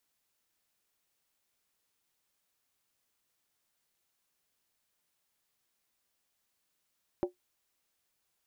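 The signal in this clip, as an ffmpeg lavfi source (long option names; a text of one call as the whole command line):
ffmpeg -f lavfi -i "aevalsrc='0.0708*pow(10,-3*t/0.13)*sin(2*PI*359*t)+0.0335*pow(10,-3*t/0.103)*sin(2*PI*572.2*t)+0.0158*pow(10,-3*t/0.089)*sin(2*PI*766.8*t)+0.0075*pow(10,-3*t/0.086)*sin(2*PI*824.3*t)+0.00355*pow(10,-3*t/0.08)*sin(2*PI*952.4*t)':duration=0.63:sample_rate=44100" out.wav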